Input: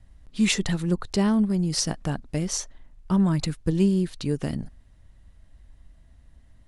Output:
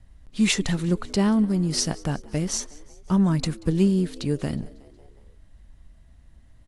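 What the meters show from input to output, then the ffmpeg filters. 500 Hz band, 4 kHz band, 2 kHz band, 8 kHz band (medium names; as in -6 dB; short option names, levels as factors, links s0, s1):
+1.0 dB, +1.0 dB, +1.0 dB, +1.0 dB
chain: -filter_complex "[0:a]asplit=2[s0][s1];[s1]asplit=4[s2][s3][s4][s5];[s2]adelay=183,afreqshift=69,volume=0.0708[s6];[s3]adelay=366,afreqshift=138,volume=0.0432[s7];[s4]adelay=549,afreqshift=207,volume=0.0263[s8];[s5]adelay=732,afreqshift=276,volume=0.016[s9];[s6][s7][s8][s9]amix=inputs=4:normalize=0[s10];[s0][s10]amix=inputs=2:normalize=0,volume=1.12" -ar 32000 -c:a aac -b:a 64k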